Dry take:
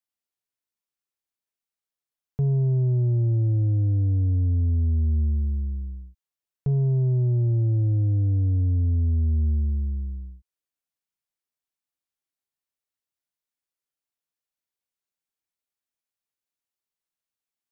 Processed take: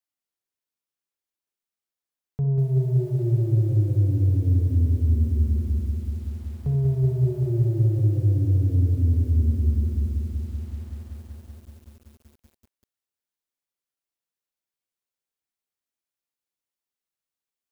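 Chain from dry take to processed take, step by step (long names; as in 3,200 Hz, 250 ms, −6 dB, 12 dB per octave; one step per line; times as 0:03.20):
mains-hum notches 60/120/180/240/300/360/420/480 Hz
on a send at −4.5 dB: four-pole ladder high-pass 260 Hz, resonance 40% + convolution reverb RT60 0.30 s, pre-delay 47 ms
on the sum: feedback echo at a low word length 190 ms, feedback 80%, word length 9 bits, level −5.5 dB
level −1 dB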